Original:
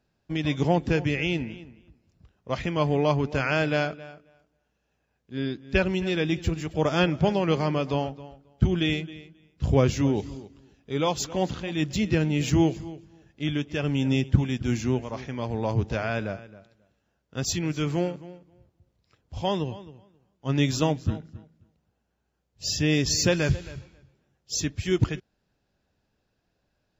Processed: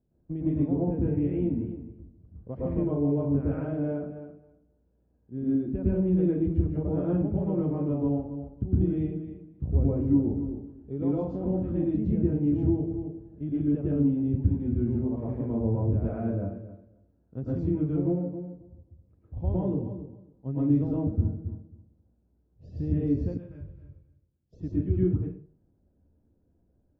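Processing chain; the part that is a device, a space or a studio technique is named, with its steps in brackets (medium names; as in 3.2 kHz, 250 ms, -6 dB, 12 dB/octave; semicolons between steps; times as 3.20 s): television next door (compression 4:1, threshold -29 dBFS, peak gain reduction 14 dB; low-pass 390 Hz 12 dB/octave; reverberation RT60 0.45 s, pre-delay 105 ms, DRR -7 dB); 23.37–24.53 s: amplifier tone stack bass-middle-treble 5-5-5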